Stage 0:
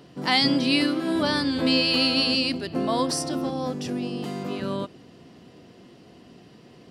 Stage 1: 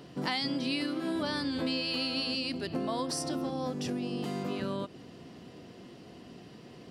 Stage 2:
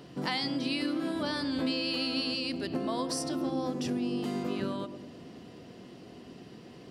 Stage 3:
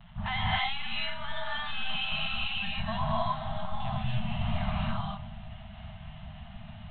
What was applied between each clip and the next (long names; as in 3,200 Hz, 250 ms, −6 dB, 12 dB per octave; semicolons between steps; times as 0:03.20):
downward compressor 4 to 1, threshold −31 dBFS, peak gain reduction 12.5 dB
feedback echo with a band-pass in the loop 106 ms, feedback 68%, band-pass 320 Hz, level −7 dB
linear-prediction vocoder at 8 kHz pitch kept; reverb whose tail is shaped and stops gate 330 ms rising, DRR −6 dB; brick-wall band-stop 230–610 Hz